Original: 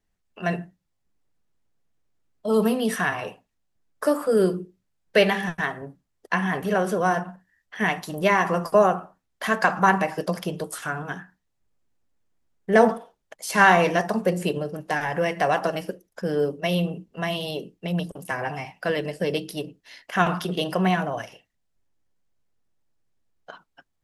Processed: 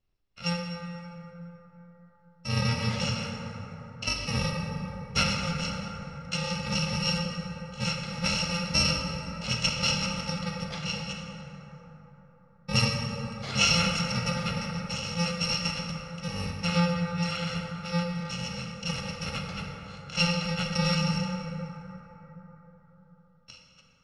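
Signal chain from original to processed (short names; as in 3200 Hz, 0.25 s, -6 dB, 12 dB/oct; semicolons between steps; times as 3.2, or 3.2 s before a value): FFT order left unsorted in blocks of 128 samples; LPF 4900 Hz 24 dB/oct; notch 1500 Hz, Q 16; plate-style reverb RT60 4.4 s, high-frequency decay 0.35×, DRR 0.5 dB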